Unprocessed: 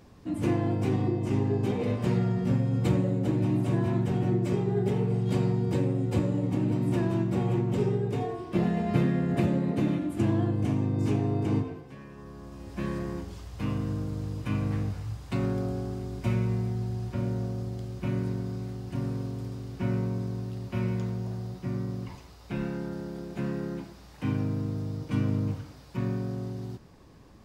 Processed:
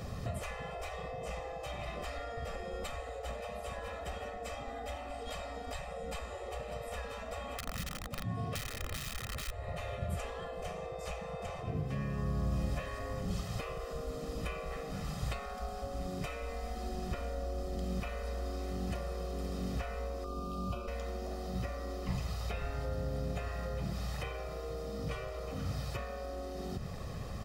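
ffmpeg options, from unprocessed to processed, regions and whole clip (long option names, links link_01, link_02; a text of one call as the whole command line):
ffmpeg -i in.wav -filter_complex "[0:a]asettb=1/sr,asplit=3[link_01][link_02][link_03];[link_01]atrim=end=7.584[link_04];[link_02]atrim=start=7.58:end=9.51,asetpts=PTS-STARTPTS,afade=type=in:duration=0.004:curve=qsin,afade=type=out:start_time=1.926:duration=0.004:curve=qsin,highpass=frequency=100:width=0.5412,highpass=frequency=100:width=1.3066,aeval=exprs='(mod(11.9*val(0)+1,2)-1)/11.9':channel_layout=same[link_05];[link_03]atrim=start=9.506[link_06];[link_04][link_05]acrossfade=duration=0.004:curve1=hsin:curve2=qsin[link_07];[link_07][link_06]acrossfade=duration=0.004:curve1=qsin:curve2=hsin,asettb=1/sr,asplit=3[link_08][link_09][link_10];[link_08]atrim=end=20.244[link_11];[link_09]atrim=start=20.24:end=20.88,asetpts=PTS-STARTPTS,afade=type=in:duration=0.004:curve=qsin,afade=type=out:start_time=0.636:duration=0.004:curve=qsin,aeval=exprs='val(0)+0.00501*sin(2*PI*1200*n/s)':channel_layout=same,acompressor=threshold=-32dB:ratio=3:attack=3.2:release=140:knee=1:detection=peak,asuperstop=centerf=1900:order=4:qfactor=1.6[link_12];[link_10]atrim=start=20.876[link_13];[link_11][link_12]acrossfade=duration=0.004:curve1=hsin:curve2=qsin[link_14];[link_14][link_13]acrossfade=duration=0.004:curve1=qsin:curve2=hsin,afftfilt=real='re*lt(hypot(re,im),0.0708)':imag='im*lt(hypot(re,im),0.0708)':win_size=1024:overlap=0.75,aecho=1:1:1.6:0.69,acrossover=split=270[link_15][link_16];[link_16]acompressor=threshold=-53dB:ratio=5[link_17];[link_15][link_17]amix=inputs=2:normalize=0,volume=10.5dB" out.wav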